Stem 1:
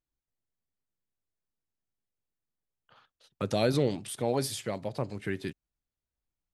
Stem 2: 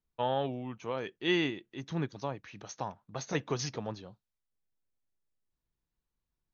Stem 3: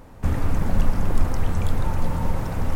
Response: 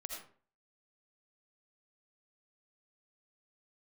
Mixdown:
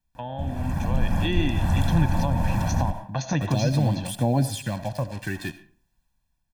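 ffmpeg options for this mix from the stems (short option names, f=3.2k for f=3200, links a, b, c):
-filter_complex "[0:a]aphaser=in_gain=1:out_gain=1:delay=2.8:decay=0.49:speed=0.46:type=sinusoidal,acrusher=bits=6:mix=0:aa=0.5,volume=-6.5dB,asplit=2[a][b];[b]volume=-7.5dB[c];[1:a]volume=2dB,asplit=2[d][e];[e]volume=-7dB[f];[2:a]highpass=f=83:p=1,adelay=150,volume=-8.5dB,asplit=2[g][h];[h]volume=-4dB[i];[d][g]amix=inputs=2:normalize=0,acompressor=threshold=-35dB:ratio=2,volume=0dB[j];[3:a]atrim=start_sample=2205[k];[c][f][i]amix=inputs=3:normalize=0[l];[l][k]afir=irnorm=-1:irlink=0[m];[a][j][m]amix=inputs=3:normalize=0,acrossover=split=470[n][o];[o]acompressor=threshold=-41dB:ratio=6[p];[n][p]amix=inputs=2:normalize=0,aecho=1:1:1.2:0.88,dynaudnorm=f=350:g=5:m=8.5dB"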